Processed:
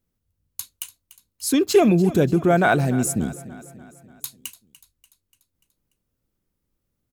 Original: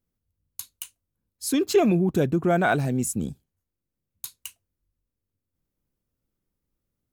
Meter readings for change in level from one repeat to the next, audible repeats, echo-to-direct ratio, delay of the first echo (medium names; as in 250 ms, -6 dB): -5.5 dB, 4, -15.5 dB, 292 ms